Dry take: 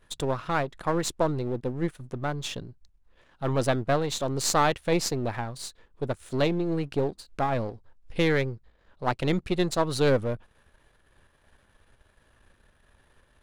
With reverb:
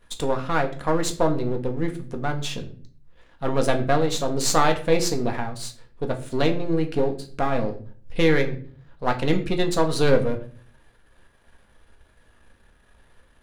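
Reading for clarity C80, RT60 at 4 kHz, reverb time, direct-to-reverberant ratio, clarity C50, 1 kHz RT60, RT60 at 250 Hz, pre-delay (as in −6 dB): 17.0 dB, 0.35 s, 0.45 s, 3.5 dB, 12.5 dB, 0.40 s, 0.65 s, 4 ms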